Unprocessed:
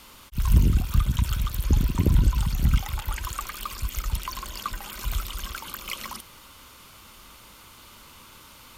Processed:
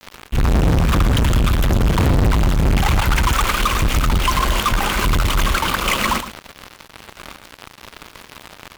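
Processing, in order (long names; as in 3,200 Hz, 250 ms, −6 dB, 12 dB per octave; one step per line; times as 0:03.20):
running median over 9 samples
fuzz pedal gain 41 dB, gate −46 dBFS
single-tap delay 113 ms −12 dB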